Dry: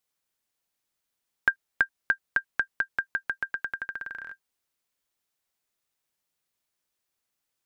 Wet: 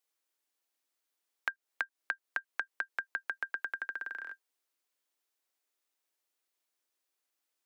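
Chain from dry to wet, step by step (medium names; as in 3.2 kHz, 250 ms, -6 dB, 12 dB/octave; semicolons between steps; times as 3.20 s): steep high-pass 260 Hz 72 dB/octave; compression 10:1, threshold -28 dBFS, peak gain reduction 11.5 dB; trim -2.5 dB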